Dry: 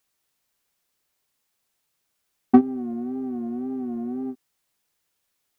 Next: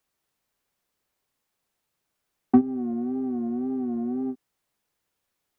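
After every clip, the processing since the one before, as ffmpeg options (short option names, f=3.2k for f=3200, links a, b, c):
-filter_complex "[0:a]highshelf=f=2k:g=-7.5,acrossover=split=200[a][b];[b]alimiter=limit=-11.5dB:level=0:latency=1:release=284[c];[a][c]amix=inputs=2:normalize=0,volume=1.5dB"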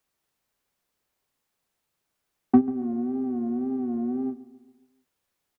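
-filter_complex "[0:a]asplit=2[a][b];[b]adelay=140,lowpass=f=2k:p=1,volume=-18dB,asplit=2[c][d];[d]adelay=140,lowpass=f=2k:p=1,volume=0.54,asplit=2[e][f];[f]adelay=140,lowpass=f=2k:p=1,volume=0.54,asplit=2[g][h];[h]adelay=140,lowpass=f=2k:p=1,volume=0.54,asplit=2[i][j];[j]adelay=140,lowpass=f=2k:p=1,volume=0.54[k];[a][c][e][g][i][k]amix=inputs=6:normalize=0"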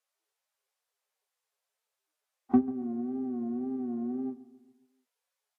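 -af "volume=-5.5dB" -ar 48000 -c:a libvorbis -b:a 32k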